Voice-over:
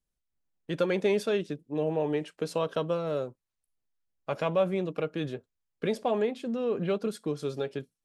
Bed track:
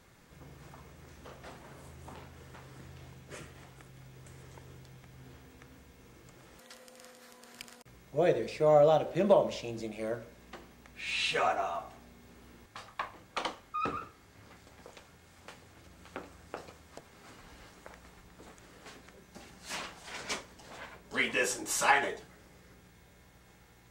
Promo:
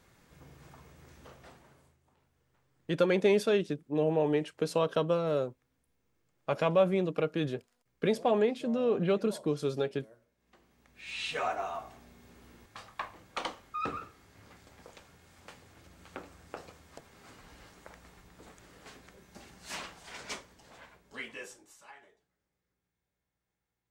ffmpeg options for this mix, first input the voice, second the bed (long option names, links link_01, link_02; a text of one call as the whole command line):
ffmpeg -i stem1.wav -i stem2.wav -filter_complex "[0:a]adelay=2200,volume=1dB[link_01];[1:a]volume=19.5dB,afade=type=out:start_time=1.23:duration=0.77:silence=0.0944061,afade=type=in:start_time=10.37:duration=1.47:silence=0.0794328,afade=type=out:start_time=19.75:duration=2.02:silence=0.0446684[link_02];[link_01][link_02]amix=inputs=2:normalize=0" out.wav